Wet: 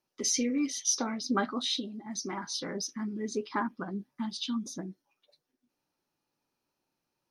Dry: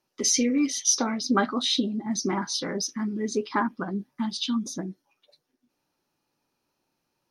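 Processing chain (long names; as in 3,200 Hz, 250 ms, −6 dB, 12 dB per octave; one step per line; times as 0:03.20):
0:01.74–0:02.44: low-shelf EQ 470 Hz −7 dB
level −6 dB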